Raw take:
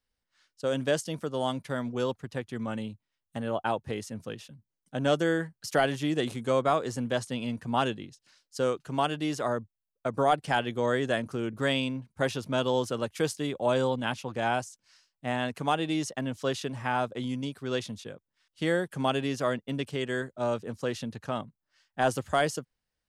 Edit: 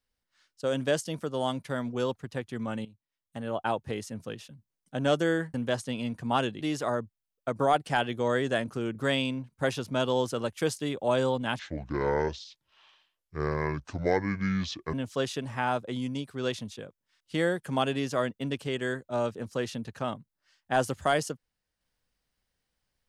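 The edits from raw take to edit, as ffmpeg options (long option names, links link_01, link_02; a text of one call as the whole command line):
ffmpeg -i in.wav -filter_complex "[0:a]asplit=6[link_01][link_02][link_03][link_04][link_05][link_06];[link_01]atrim=end=2.85,asetpts=PTS-STARTPTS,afade=type=out:start_time=2.846:duration=0.004:curve=hsin:silence=0.16788[link_07];[link_02]atrim=start=2.85:end=5.542,asetpts=PTS-STARTPTS,afade=type=in:duration=0.85:silence=0.16788[link_08];[link_03]atrim=start=6.968:end=8.042[link_09];[link_04]atrim=start=9.188:end=14.174[link_10];[link_05]atrim=start=14.17:end=16.21,asetpts=PTS-STARTPTS,asetrate=26901,aresample=44100[link_11];[link_06]atrim=start=16.206[link_12];[link_07][link_08]concat=n=2:v=0:a=1[link_13];[link_13][link_09]acrossfade=duration=0.004:curve1=hsin:curve2=hsin[link_14];[link_14][link_10]acrossfade=duration=0.004:curve1=hsin:curve2=hsin[link_15];[link_15][link_11]acrossfade=duration=0.004:curve1=hsin:curve2=hsin[link_16];[link_16][link_12]acrossfade=duration=0.004:curve1=hsin:curve2=hsin" out.wav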